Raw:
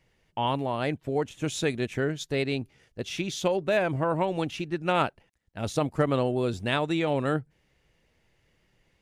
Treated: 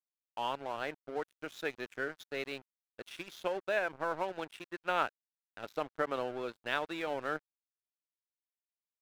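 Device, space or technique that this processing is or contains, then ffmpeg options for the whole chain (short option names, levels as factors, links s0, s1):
pocket radio on a weak battery: -af "highpass=390,lowpass=4400,aeval=exprs='sgn(val(0))*max(abs(val(0))-0.00944,0)':c=same,equalizer=f=1500:t=o:w=0.46:g=6,volume=0.473"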